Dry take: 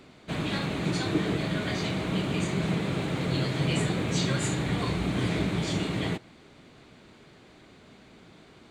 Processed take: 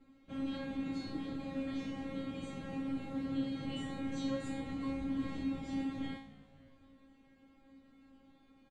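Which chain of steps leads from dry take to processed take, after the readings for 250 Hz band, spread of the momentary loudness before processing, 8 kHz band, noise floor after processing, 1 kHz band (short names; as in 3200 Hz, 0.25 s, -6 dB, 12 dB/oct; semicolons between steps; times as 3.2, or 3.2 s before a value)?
-7.0 dB, 3 LU, -21.0 dB, -65 dBFS, -13.0 dB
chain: tilt -3 dB/oct; resonator 270 Hz, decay 0.49 s, harmonics all, mix 100%; frequency-shifting echo 0.266 s, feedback 48%, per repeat -60 Hz, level -20 dB; gain +3 dB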